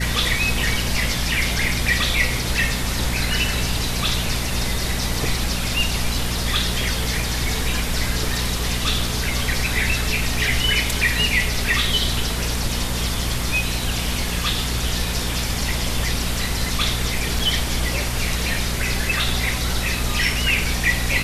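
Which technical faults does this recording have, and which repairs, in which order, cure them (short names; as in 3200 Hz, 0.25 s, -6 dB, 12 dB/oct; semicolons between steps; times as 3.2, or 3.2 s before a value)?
hum 60 Hz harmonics 4 -26 dBFS
17.39 gap 4 ms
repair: de-hum 60 Hz, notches 4; interpolate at 17.39, 4 ms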